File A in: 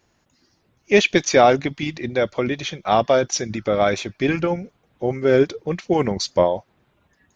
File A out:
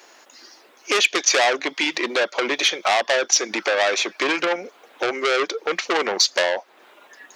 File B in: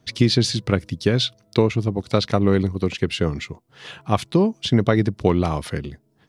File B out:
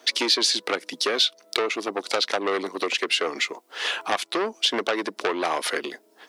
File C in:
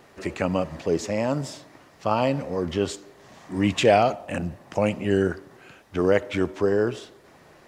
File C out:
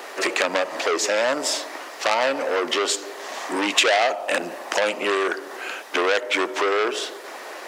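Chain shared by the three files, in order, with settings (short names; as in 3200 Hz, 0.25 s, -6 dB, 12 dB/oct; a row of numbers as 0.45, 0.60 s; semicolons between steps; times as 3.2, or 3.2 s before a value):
Bessel high-pass 520 Hz, order 6; compressor 2.5:1, threshold -37 dBFS; core saturation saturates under 3700 Hz; normalise peaks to -2 dBFS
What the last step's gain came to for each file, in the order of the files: +18.5, +14.0, +18.5 dB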